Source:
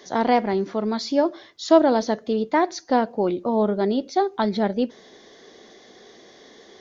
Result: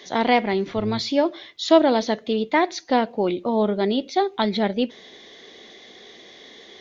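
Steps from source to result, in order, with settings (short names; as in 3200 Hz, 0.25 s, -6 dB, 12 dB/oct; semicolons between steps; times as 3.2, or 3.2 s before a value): 0.66–1.1 octaver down 1 oct, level -6 dB; band shelf 2800 Hz +8.5 dB 1.2 oct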